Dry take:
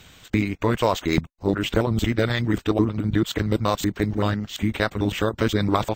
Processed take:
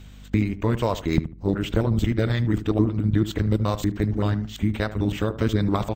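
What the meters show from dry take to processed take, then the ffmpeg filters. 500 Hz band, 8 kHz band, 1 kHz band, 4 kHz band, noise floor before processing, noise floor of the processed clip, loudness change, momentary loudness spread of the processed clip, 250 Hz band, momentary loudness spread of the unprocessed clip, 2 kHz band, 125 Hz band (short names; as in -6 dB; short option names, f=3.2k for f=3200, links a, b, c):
-3.0 dB, -6.0 dB, -5.0 dB, -6.0 dB, -53 dBFS, -43 dBFS, -0.5 dB, 3 LU, -0.5 dB, 3 LU, -5.5 dB, +2.5 dB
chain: -filter_complex "[0:a]lowshelf=f=310:g=9,aeval=exprs='val(0)+0.0141*(sin(2*PI*50*n/s)+sin(2*PI*2*50*n/s)/2+sin(2*PI*3*50*n/s)/3+sin(2*PI*4*50*n/s)/4+sin(2*PI*5*50*n/s)/5)':c=same,asplit=2[a][b];[b]adelay=75,lowpass=f=1.3k:p=1,volume=-12.5dB,asplit=2[c][d];[d]adelay=75,lowpass=f=1.3k:p=1,volume=0.27,asplit=2[e][f];[f]adelay=75,lowpass=f=1.3k:p=1,volume=0.27[g];[c][e][g]amix=inputs=3:normalize=0[h];[a][h]amix=inputs=2:normalize=0,volume=-6dB"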